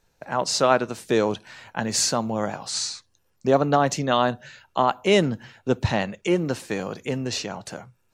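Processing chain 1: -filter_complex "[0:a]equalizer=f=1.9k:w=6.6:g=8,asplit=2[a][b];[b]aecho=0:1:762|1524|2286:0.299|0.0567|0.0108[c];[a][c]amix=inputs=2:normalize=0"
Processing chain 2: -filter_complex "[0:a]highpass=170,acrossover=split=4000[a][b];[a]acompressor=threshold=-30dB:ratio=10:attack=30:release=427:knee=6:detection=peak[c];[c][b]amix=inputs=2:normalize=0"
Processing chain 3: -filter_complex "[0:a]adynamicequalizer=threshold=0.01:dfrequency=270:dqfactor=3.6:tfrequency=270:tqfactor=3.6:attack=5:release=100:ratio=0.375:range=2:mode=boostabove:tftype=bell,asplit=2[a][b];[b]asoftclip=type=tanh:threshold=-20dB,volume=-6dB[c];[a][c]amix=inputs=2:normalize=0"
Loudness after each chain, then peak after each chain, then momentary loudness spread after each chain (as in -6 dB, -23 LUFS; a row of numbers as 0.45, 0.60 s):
-23.5, -30.5, -21.5 LUFS; -3.5, -10.5, -3.5 dBFS; 10, 12, 12 LU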